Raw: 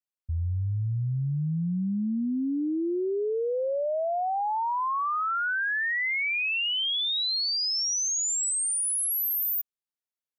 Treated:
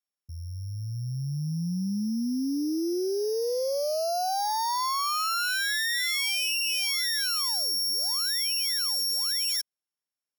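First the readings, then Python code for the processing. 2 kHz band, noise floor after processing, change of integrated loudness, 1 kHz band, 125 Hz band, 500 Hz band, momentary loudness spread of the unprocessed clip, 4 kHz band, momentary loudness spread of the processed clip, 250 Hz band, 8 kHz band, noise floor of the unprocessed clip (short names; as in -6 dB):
-2.5 dB, under -85 dBFS, 0.0 dB, -1.0 dB, -4.0 dB, -0.5 dB, 5 LU, +2.0 dB, 9 LU, -0.5 dB, -4.0 dB, under -85 dBFS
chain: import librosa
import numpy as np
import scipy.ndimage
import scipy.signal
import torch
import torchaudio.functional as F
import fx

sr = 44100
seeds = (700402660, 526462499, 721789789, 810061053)

y = np.r_[np.sort(x[:len(x) // 8 * 8].reshape(-1, 8), axis=1).ravel(), x[len(x) // 8 * 8:]]
y = scipy.signal.sosfilt(scipy.signal.butter(2, 140.0, 'highpass', fs=sr, output='sos'), y)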